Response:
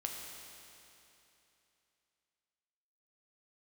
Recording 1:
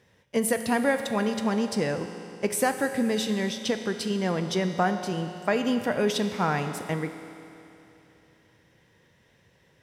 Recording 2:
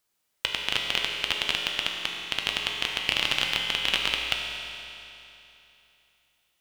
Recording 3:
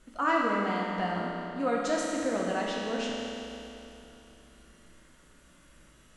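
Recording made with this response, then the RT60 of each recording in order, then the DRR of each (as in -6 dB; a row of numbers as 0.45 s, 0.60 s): 2; 3.0 s, 3.0 s, 3.0 s; 7.0 dB, 0.5 dB, -4.0 dB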